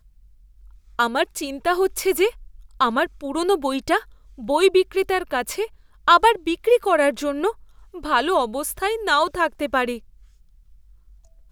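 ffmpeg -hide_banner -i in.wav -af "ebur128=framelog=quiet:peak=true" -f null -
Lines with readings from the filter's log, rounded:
Integrated loudness:
  I:         -21.1 LUFS
  Threshold: -32.3 LUFS
Loudness range:
  LRA:         3.8 LU
  Threshold: -41.5 LUFS
  LRA low:   -23.4 LUFS
  LRA high:  -19.6 LUFS
True peak:
  Peak:       -2.9 dBFS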